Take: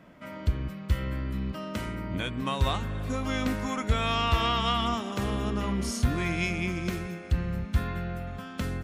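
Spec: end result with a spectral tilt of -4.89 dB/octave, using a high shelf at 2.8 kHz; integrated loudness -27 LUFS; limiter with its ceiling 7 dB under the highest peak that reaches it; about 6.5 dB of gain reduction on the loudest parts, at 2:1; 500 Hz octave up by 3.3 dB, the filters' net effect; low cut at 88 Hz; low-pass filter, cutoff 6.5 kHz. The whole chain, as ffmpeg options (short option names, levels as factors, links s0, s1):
-af "highpass=88,lowpass=6500,equalizer=f=500:t=o:g=4,highshelf=f=2800:g=7,acompressor=threshold=0.0224:ratio=2,volume=2.51,alimiter=limit=0.158:level=0:latency=1"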